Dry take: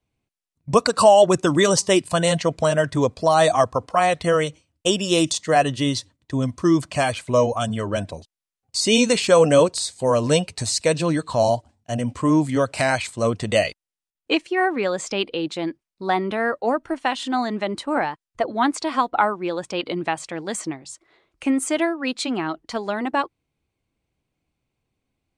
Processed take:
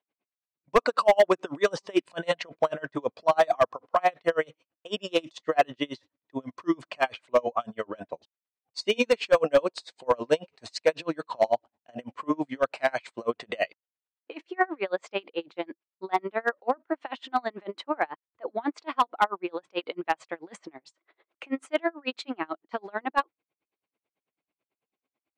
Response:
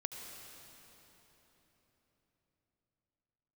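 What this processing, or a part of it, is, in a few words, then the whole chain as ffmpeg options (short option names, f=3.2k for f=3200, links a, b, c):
helicopter radio: -af "highpass=380,lowpass=2.8k,aeval=exprs='val(0)*pow(10,-34*(0.5-0.5*cos(2*PI*9.1*n/s))/20)':c=same,asoftclip=type=hard:threshold=-14.5dB,volume=2dB"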